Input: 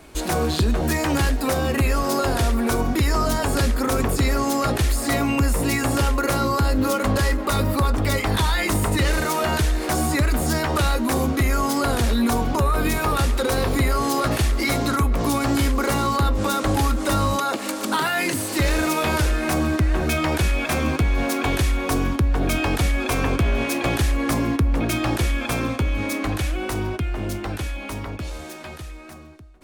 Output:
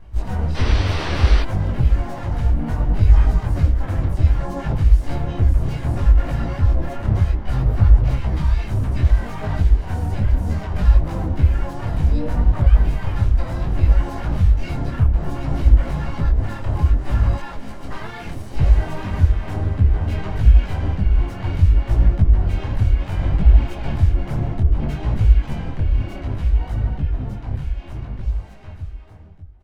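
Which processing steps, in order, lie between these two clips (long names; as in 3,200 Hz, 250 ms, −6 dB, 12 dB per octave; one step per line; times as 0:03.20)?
lower of the sound and its delayed copy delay 1.3 ms
sound drawn into the spectrogram noise, 0:00.56–0:01.43, 250–4,900 Hz −17 dBFS
pitch-shifted copies added −7 semitones −7 dB, +4 semitones −1 dB, +12 semitones −11 dB
RIAA equalisation playback
micro pitch shift up and down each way 22 cents
level −8 dB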